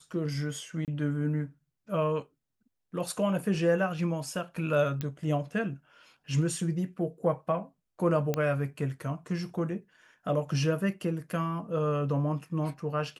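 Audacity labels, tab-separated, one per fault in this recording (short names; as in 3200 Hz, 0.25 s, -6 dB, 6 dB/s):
0.850000	0.880000	gap 28 ms
5.010000	5.010000	pop -19 dBFS
8.340000	8.340000	pop -15 dBFS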